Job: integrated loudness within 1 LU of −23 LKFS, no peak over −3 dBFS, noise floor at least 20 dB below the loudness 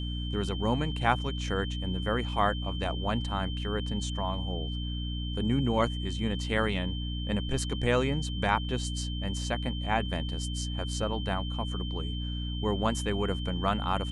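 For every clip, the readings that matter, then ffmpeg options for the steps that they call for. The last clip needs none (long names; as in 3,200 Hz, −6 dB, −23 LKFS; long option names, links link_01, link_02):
mains hum 60 Hz; hum harmonics up to 300 Hz; level of the hum −31 dBFS; interfering tone 3,100 Hz; level of the tone −40 dBFS; integrated loudness −31.0 LKFS; sample peak −10.0 dBFS; target loudness −23.0 LKFS
→ -af "bandreject=frequency=60:width_type=h:width=6,bandreject=frequency=120:width_type=h:width=6,bandreject=frequency=180:width_type=h:width=6,bandreject=frequency=240:width_type=h:width=6,bandreject=frequency=300:width_type=h:width=6"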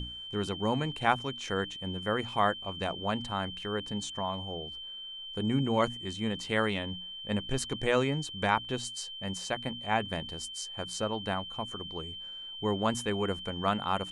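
mains hum none found; interfering tone 3,100 Hz; level of the tone −40 dBFS
→ -af "bandreject=frequency=3100:width=30"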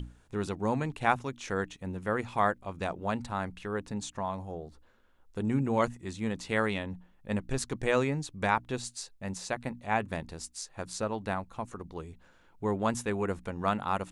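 interfering tone none found; integrated loudness −33.0 LKFS; sample peak −10.0 dBFS; target loudness −23.0 LKFS
→ -af "volume=10dB,alimiter=limit=-3dB:level=0:latency=1"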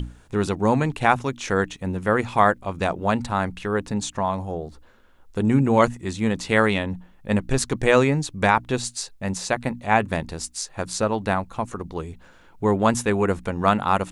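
integrated loudness −23.0 LKFS; sample peak −3.0 dBFS; background noise floor −52 dBFS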